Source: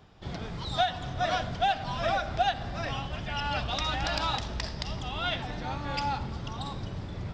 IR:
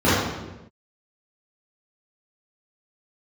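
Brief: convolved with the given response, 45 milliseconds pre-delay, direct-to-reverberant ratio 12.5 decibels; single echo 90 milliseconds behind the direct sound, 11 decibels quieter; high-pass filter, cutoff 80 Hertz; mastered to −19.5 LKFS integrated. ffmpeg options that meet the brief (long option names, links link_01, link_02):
-filter_complex "[0:a]highpass=80,aecho=1:1:90:0.282,asplit=2[link_01][link_02];[1:a]atrim=start_sample=2205,adelay=45[link_03];[link_02][link_03]afir=irnorm=-1:irlink=0,volume=-36dB[link_04];[link_01][link_04]amix=inputs=2:normalize=0,volume=11.5dB"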